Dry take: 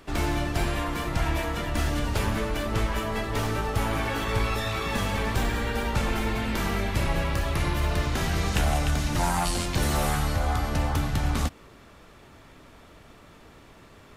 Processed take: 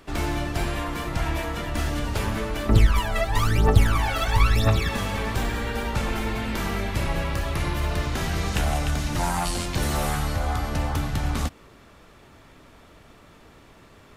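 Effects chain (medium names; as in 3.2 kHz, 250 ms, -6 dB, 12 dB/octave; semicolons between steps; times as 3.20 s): 2.69–4.89 s: phaser 1 Hz, delay 1.6 ms, feedback 78%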